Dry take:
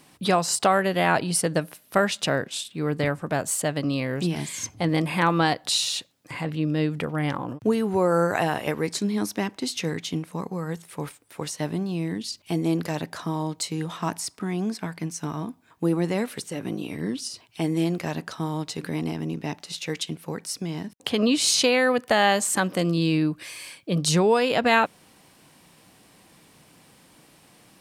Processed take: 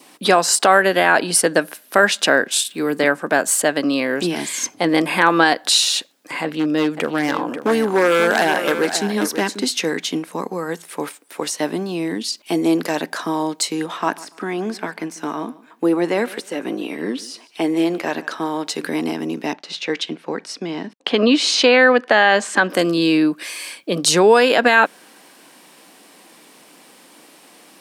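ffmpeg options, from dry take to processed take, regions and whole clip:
-filter_complex "[0:a]asettb=1/sr,asplit=3[a][b][c];[a]atrim=end=2.514[d];[b]atrim=start=2.51:end=2.99,asetpts=PTS-STARTPTS,afade=t=in:d=0.004:c=qsin,afade=t=out:st=0.476:d=0.004:c=qsin,highshelf=f=7.3k:g=11,acrossover=split=350|3000[e][f][g];[f]acompressor=threshold=-31dB:ratio=2:attack=3.2:release=140:knee=2.83:detection=peak[h];[e][h][g]amix=inputs=3:normalize=0[i];[c]atrim=start=2.986[j];[d][i]acrossfade=d=0.004:c1=hsin:c2=qsin[k];[k][j]acrossfade=d=0.004:c1=qsin:c2=hsin,asettb=1/sr,asplit=3[l][m][n];[l]atrim=end=6.434[o];[m]atrim=start=6.43:end=9.65,asetpts=PTS-STARTPTS,afade=t=in:d=0.004:c=qsin,afade=t=out:st=3.216:d=0.004:c=qsin,aeval=exprs='0.133*(abs(mod(val(0)/0.133+3,4)-2)-1)':c=same,aecho=1:1:538:0.316,atrim=end_sample=142002[p];[n]atrim=start=9.646[q];[o][p]acrossfade=d=0.004:c1=hsin:c2=qsin[r];[r][q]acrossfade=d=0.004:c1=qsin:c2=hsin,asettb=1/sr,asplit=3[s][t][u];[s]atrim=end=13.864[v];[t]atrim=start=13.86:end=18.67,asetpts=PTS-STARTPTS,afade=t=in:d=0.004:c=qsin,afade=t=out:st=4.806:d=0.004:c=qsin,deesser=0.7,bass=f=250:g=-4,treble=f=4k:g=-6,aecho=1:1:144|288:0.1|0.026,atrim=end_sample=212121[w];[u]atrim=start=18.666[x];[v][w]acrossfade=d=0.004:c1=hsin:c2=qsin[y];[y][x]acrossfade=d=0.004:c1=qsin:c2=hsin,asettb=1/sr,asplit=3[z][aa][ab];[z]atrim=end=19.534[ac];[aa]atrim=start=19.53:end=22.7,asetpts=PTS-STARTPTS,afade=t=in:d=0.004:c=qsin,afade=t=out:st=3.166:d=0.004:c=qsin,lowpass=4.1k,agate=range=-33dB:threshold=-49dB:ratio=3:release=100:detection=peak[ad];[ab]atrim=start=22.696[ae];[ac][ad]acrossfade=d=0.004:c1=hsin:c2=qsin[af];[af][ae]acrossfade=d=0.004:c1=qsin:c2=hsin,highpass=f=240:w=0.5412,highpass=f=240:w=1.3066,adynamicequalizer=threshold=0.00501:dfrequency=1600:dqfactor=6.1:tfrequency=1600:tqfactor=6.1:attack=5:release=100:ratio=0.375:range=4:mode=boostabove:tftype=bell,alimiter=level_in=9.5dB:limit=-1dB:release=50:level=0:latency=1,volume=-1dB"

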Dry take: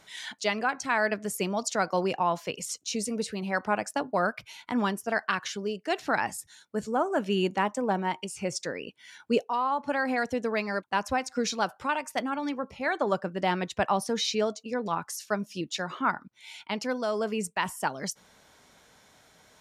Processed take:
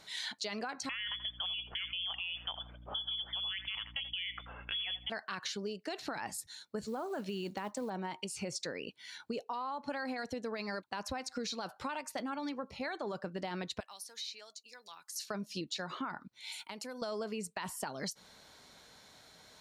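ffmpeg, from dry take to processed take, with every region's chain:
-filter_complex "[0:a]asettb=1/sr,asplit=3[a][b][c];[a]atrim=end=0.894[d];[b]atrim=start=0.89:end=5.1,asetpts=PTS-STARTPTS,afade=t=in:d=0.004:c=qsin,afade=t=out:st=4.206:d=0.004:c=qsin,lowpass=f=3.1k:t=q:w=0.5098,lowpass=f=3.1k:t=q:w=0.6013,lowpass=f=3.1k:t=q:w=0.9,lowpass=f=3.1k:t=q:w=2.563,afreqshift=-3600,aeval=exprs='val(0)+0.00282*(sin(2*PI*60*n/s)+sin(2*PI*2*60*n/s)/2+sin(2*PI*3*60*n/s)/3+sin(2*PI*4*60*n/s)/4+sin(2*PI*5*60*n/s)/5)':c=same,asplit=2[e][f];[f]adelay=82,lowpass=f=1.3k:p=1,volume=-14dB,asplit=2[g][h];[h]adelay=82,lowpass=f=1.3k:p=1,volume=0.34,asplit=2[i][j];[j]adelay=82,lowpass=f=1.3k:p=1,volume=0.34[k];[e][g][i][k]amix=inputs=4:normalize=0,atrim=end_sample=185661[l];[c]atrim=start=5.096[m];[d][l]acrossfade=d=0.004:c1=hsin:c2=qsin[n];[n][m]acrossfade=d=0.004:c1=qsin:c2=hsin,asettb=1/sr,asplit=3[o][p][q];[o]atrim=end=6.814[r];[p]atrim=start=6.81:end=7.9,asetpts=PTS-STARTPTS,afade=t=in:d=0.004:c=qsin,afade=t=out:st=1.086:d=0.004:c=qsin,lowshelf=f=110:g=3.5,acrusher=bits=7:mode=log:mix=0:aa=0.000001[s];[q]atrim=start=7.896[t];[r][s]acrossfade=d=0.004:c1=hsin:c2=qsin[u];[u][t]acrossfade=d=0.004:c1=qsin:c2=hsin,asettb=1/sr,asplit=3[v][w][x];[v]atrim=end=13.804[y];[w]atrim=start=13.8:end=15.16,asetpts=PTS-STARTPTS,afade=t=in:d=0.004:c=qsin,afade=t=out:st=1.356:d=0.004:c=qsin,acrossover=split=540|2300[z][aa][ab];[z]acompressor=threshold=-39dB:ratio=4[ac];[aa]acompressor=threshold=-33dB:ratio=4[ad];[ab]acompressor=threshold=-46dB:ratio=4[ae];[ac][ad][ae]amix=inputs=3:normalize=0,aderivative[af];[x]atrim=start=15.156[ag];[y][af]acrossfade=d=0.004:c1=hsin:c2=qsin[ah];[ah][ag]acrossfade=d=0.004:c1=qsin:c2=hsin,asettb=1/sr,asplit=3[ai][aj][ak];[ai]atrim=end=16.524[al];[aj]atrim=start=16.52:end=17.02,asetpts=PTS-STARTPTS,afade=t=in:d=0.004:c=qsin,afade=t=out:st=0.496:d=0.004:c=qsin,highpass=f=210:p=1,highshelf=f=6.8k:t=q:w=1.5:g=10,acompressor=threshold=-41dB:ratio=4:attack=3.2:release=140:knee=1:detection=peak[am];[ak]atrim=start=17.016[an];[al][am]acrossfade=d=0.004:c1=hsin:c2=qsin[ao];[ao][an]acrossfade=d=0.004:c1=qsin:c2=hsin,equalizer=f=4.2k:w=4:g=10,alimiter=limit=-21.5dB:level=0:latency=1:release=12,acompressor=threshold=-34dB:ratio=6,volume=-1.5dB"

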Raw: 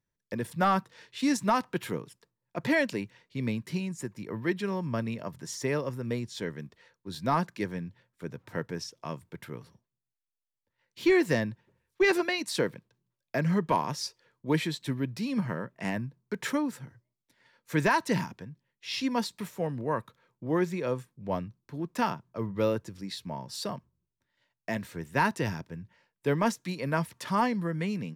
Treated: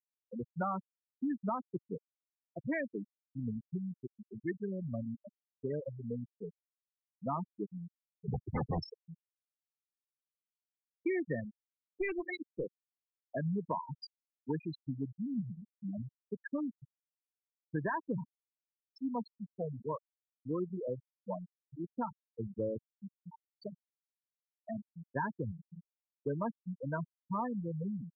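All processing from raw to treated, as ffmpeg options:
-filter_complex "[0:a]asettb=1/sr,asplit=3[a][b][c];[a]atrim=end=8.284[d];[b]atrim=start=8.28:end=8.94,asetpts=PTS-STARTPTS,afade=t=in:d=0.004:c=qsin,afade=t=out:st=0.656:d=0.004:c=qsin,lowpass=f=1.3k:p=1,aeval=exprs='0.106*sin(PI/2*5.62*val(0)/0.106)':c=same[e];[c]atrim=start=8.936[f];[d][e]acrossfade=d=0.004:c1=hsin:c2=qsin[g];[g][f]acrossfade=d=0.004:c1=qsin:c2=hsin,asettb=1/sr,asplit=3[h][i][j];[h]atrim=end=11.404[k];[i]atrim=start=11.4:end=12.67,asetpts=PTS-STARTPTS,afade=t=in:d=0.004:c=qsin,afade=t=out:st=1.266:d=0.004:c=qsin,equalizer=f=8.4k:w=0.72:g=3.5,aeval=exprs='(tanh(8.91*val(0)+0.45)-tanh(0.45))/8.91':c=same[l];[j]atrim=start=12.666[m];[k][l]acrossfade=d=0.004:c1=hsin:c2=qsin[n];[n][m]acrossfade=d=0.004:c1=qsin:c2=hsin,afftfilt=real='re*gte(hypot(re,im),0.141)':imag='im*gte(hypot(re,im),0.141)':win_size=1024:overlap=0.75,acompressor=threshold=-27dB:ratio=3,volume=-5dB"

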